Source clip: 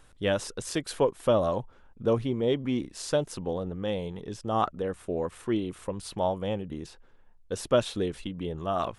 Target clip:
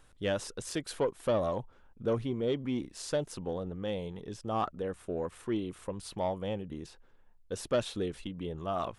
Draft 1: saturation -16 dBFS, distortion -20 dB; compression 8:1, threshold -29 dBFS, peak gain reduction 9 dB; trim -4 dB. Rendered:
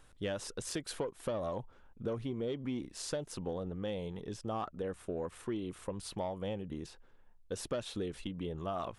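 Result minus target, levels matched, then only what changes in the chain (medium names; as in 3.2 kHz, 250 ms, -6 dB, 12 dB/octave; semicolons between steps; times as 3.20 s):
compression: peak gain reduction +9 dB
remove: compression 8:1, threshold -29 dBFS, peak gain reduction 9 dB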